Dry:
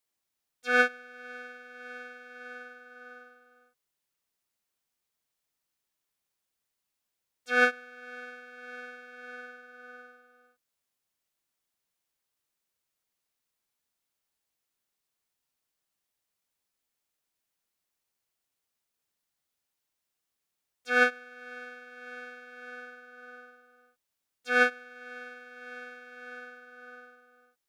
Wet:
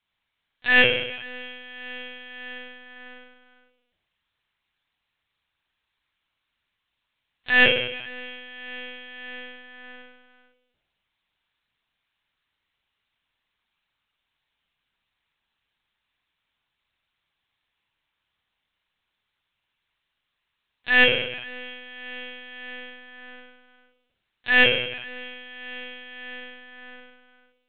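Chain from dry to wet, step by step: on a send: flutter echo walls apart 8.4 m, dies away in 0.9 s; on the sum: formant shift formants +2 st; tilt shelf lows -6 dB, about 920 Hz; in parallel at -8 dB: overload inside the chain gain 20 dB; on the sum: LPC vocoder at 8 kHz pitch kept; trim +3 dB

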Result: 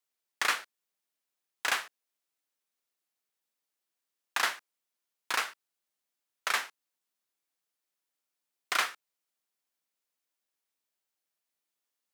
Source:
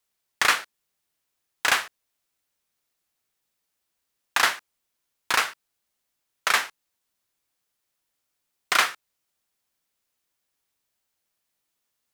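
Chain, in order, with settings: high-pass 210 Hz 12 dB/octave; trim -8 dB

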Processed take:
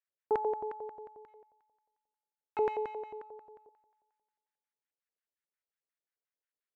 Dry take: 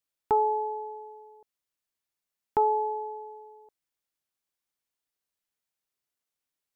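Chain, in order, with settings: 1.28–3.20 s: median filter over 25 samples; FDN reverb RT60 1.6 s, low-frequency decay 0.85×, high-frequency decay 1×, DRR 18.5 dB; LFO band-pass square 5.6 Hz 470–1700 Hz

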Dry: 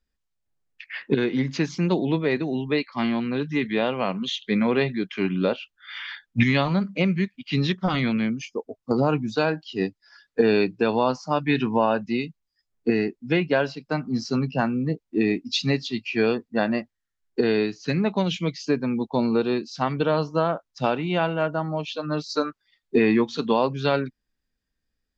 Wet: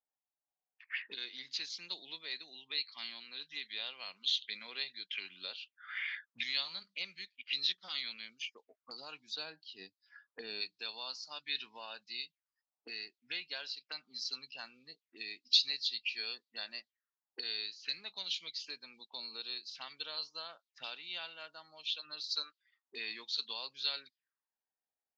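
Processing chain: tilt EQ +1.5 dB/octave, from 9.35 s -2 dB/octave, from 10.60 s +1.5 dB/octave; auto-wah 760–4200 Hz, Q 4.4, up, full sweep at -26 dBFS

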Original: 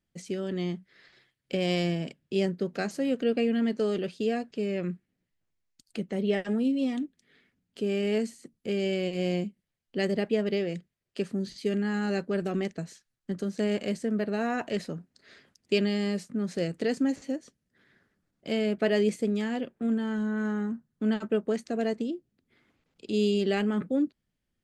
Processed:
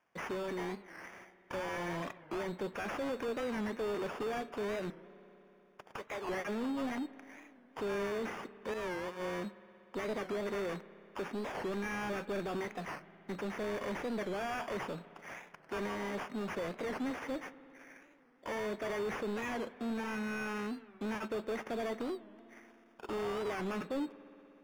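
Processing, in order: 4.91–6.30 s: high-pass 670 Hz 12 dB/octave; 8.74–9.22 s: expander -21 dBFS; tilt EQ +2 dB/octave; peak limiter -23 dBFS, peak gain reduction 10.5 dB; sample-and-hold 11×; overdrive pedal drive 25 dB, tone 1.8 kHz, clips at -21 dBFS; spring tank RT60 3.5 s, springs 60 ms, chirp 60 ms, DRR 16 dB; warped record 45 rpm, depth 160 cents; trim -8 dB

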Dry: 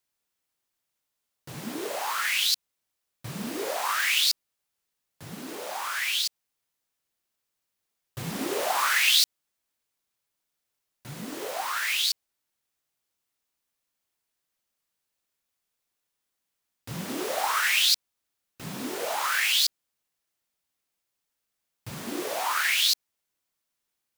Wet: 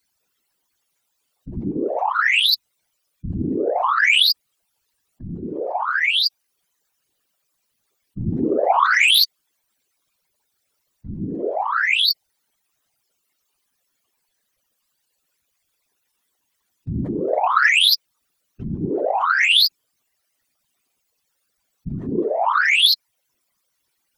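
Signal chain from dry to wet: spectral contrast enhancement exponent 3.6; sine folder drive 7 dB, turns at -11 dBFS; whisper effect

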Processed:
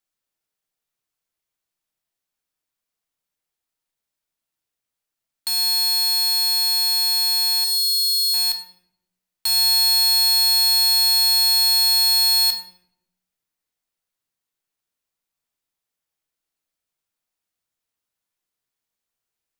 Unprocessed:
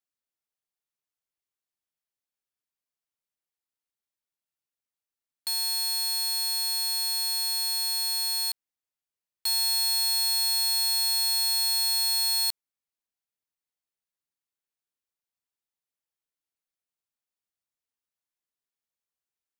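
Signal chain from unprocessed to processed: 7.64–8.34 s: steep high-pass 3 kHz 96 dB/octave; simulated room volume 170 m³, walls mixed, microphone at 0.59 m; trim +6 dB

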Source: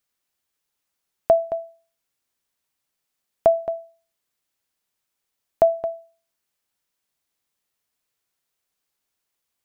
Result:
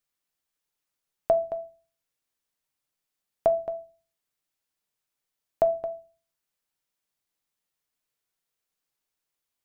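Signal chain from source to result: simulated room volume 150 m³, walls furnished, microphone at 0.47 m; trim -5.5 dB

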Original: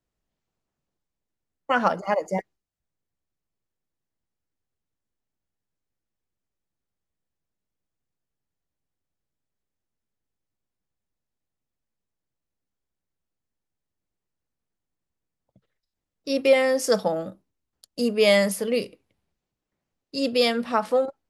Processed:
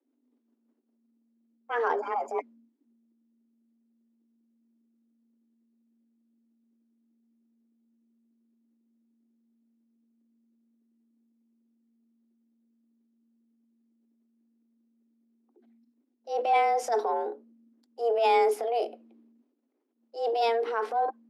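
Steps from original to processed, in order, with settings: RIAA curve playback; transient shaper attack -8 dB, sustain +6 dB; frequency shift +230 Hz; trim -6.5 dB

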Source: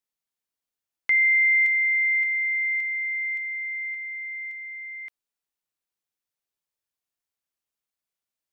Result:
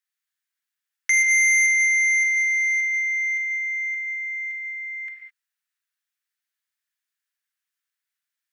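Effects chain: resonant high-pass 1.7 kHz, resonance Q 3; peaking EQ 2.2 kHz -2.5 dB; gated-style reverb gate 230 ms flat, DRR 2 dB; transformer saturation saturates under 3.8 kHz

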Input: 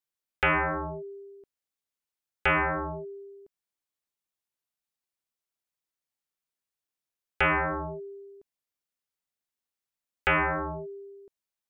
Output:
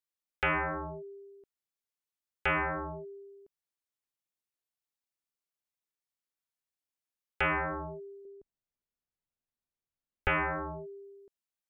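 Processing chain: 8.25–10.28 s: tilt EQ -3 dB/octave; trim -5 dB

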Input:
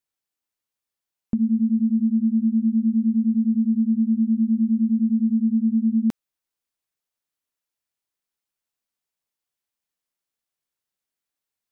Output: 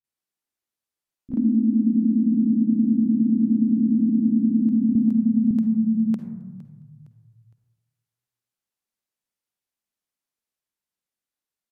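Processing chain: peaking EQ 200 Hz +6 dB 1.3 oct; in parallel at +2 dB: level held to a coarse grid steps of 10 dB; on the sum: bands offset in time lows, highs 40 ms, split 170 Hz; on a send at -8.5 dB: reverberation RT60 1.2 s, pre-delay 42 ms; on the sum: resampled via 32 kHz; frequency-shifting echo 461 ms, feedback 42%, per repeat -36 Hz, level -19 dB; ever faster or slower copies 115 ms, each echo +2 st, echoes 3, each echo -6 dB; 4.95–5.51 s: three bands compressed up and down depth 70%; trim -9 dB

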